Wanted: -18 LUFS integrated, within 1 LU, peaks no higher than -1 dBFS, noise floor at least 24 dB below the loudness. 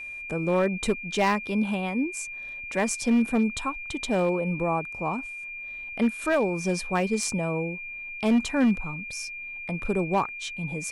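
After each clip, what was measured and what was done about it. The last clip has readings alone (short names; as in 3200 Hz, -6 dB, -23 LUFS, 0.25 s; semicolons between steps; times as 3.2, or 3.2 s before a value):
clipped 1.0%; flat tops at -16.5 dBFS; steady tone 2400 Hz; tone level -35 dBFS; loudness -27.0 LUFS; peak -16.5 dBFS; loudness target -18.0 LUFS
-> clip repair -16.5 dBFS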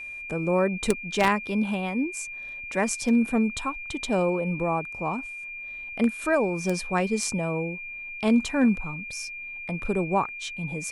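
clipped 0.0%; steady tone 2400 Hz; tone level -35 dBFS
-> notch 2400 Hz, Q 30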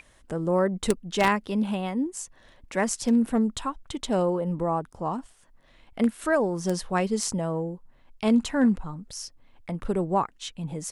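steady tone none; loudness -27.0 LUFS; peak -7.0 dBFS; loudness target -18.0 LUFS
-> gain +9 dB; limiter -1 dBFS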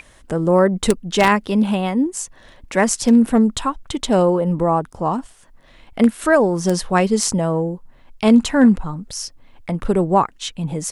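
loudness -18.0 LUFS; peak -1.0 dBFS; noise floor -49 dBFS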